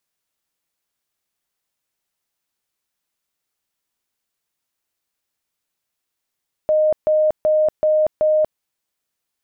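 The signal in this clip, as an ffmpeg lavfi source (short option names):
-f lavfi -i "aevalsrc='0.237*sin(2*PI*617*mod(t,0.38))*lt(mod(t,0.38),146/617)':d=1.9:s=44100"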